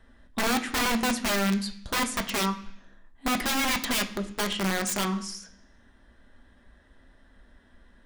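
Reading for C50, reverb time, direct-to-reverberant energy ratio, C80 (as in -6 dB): 13.0 dB, 0.65 s, 4.5 dB, 16.0 dB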